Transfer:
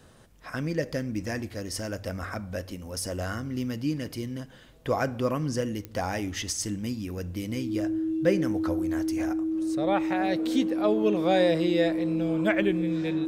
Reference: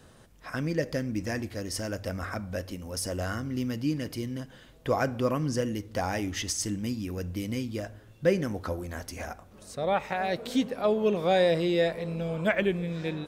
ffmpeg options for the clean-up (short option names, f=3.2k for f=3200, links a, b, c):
-af "adeclick=t=4,bandreject=f=320:w=30"